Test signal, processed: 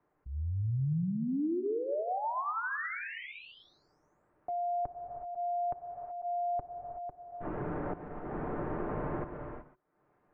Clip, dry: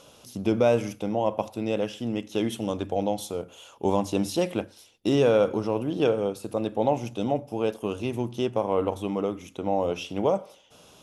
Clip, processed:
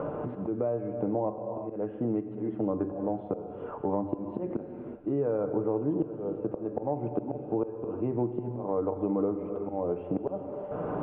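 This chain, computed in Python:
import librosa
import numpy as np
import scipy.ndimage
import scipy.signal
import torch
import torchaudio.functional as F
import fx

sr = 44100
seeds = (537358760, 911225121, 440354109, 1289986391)

y = scipy.signal.sosfilt(scipy.signal.bessel(6, 1000.0, 'lowpass', norm='mag', fs=sr, output='sos'), x)
y = fx.peak_eq(y, sr, hz=370.0, db=11.0, octaves=0.22)
y = fx.notch(y, sr, hz=380.0, q=12.0)
y = y + 0.35 * np.pad(y, (int(6.7 * sr / 1000.0), 0))[:len(y)]
y = fx.auto_swell(y, sr, attack_ms=765.0)
y = fx.rider(y, sr, range_db=10, speed_s=2.0)
y = fx.rev_gated(y, sr, seeds[0], gate_ms=400, shape='flat', drr_db=9.0)
y = fx.band_squash(y, sr, depth_pct=100)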